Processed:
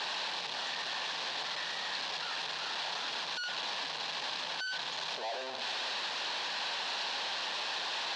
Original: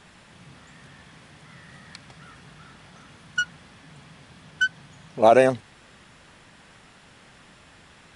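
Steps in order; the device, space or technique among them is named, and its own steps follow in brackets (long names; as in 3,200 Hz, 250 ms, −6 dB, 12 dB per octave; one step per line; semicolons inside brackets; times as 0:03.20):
flutter between parallel walls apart 10.1 metres, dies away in 0.22 s
home computer beeper (sign of each sample alone; loudspeaker in its box 770–4,900 Hz, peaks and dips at 900 Hz +3 dB, 1,300 Hz −9 dB, 2,100 Hz −8 dB, 4,100 Hz +5 dB)
level −3.5 dB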